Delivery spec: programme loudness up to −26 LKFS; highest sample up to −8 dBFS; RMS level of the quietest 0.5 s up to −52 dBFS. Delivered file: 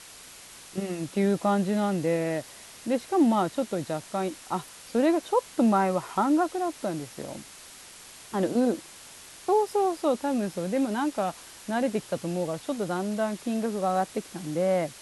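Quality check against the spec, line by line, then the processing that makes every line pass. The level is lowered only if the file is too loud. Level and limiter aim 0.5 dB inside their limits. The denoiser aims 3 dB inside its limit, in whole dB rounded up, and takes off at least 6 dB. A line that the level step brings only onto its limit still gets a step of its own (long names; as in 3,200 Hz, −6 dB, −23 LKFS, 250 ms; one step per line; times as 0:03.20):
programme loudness −27.5 LKFS: in spec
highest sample −12.0 dBFS: in spec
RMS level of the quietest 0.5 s −47 dBFS: out of spec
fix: broadband denoise 8 dB, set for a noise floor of −47 dBFS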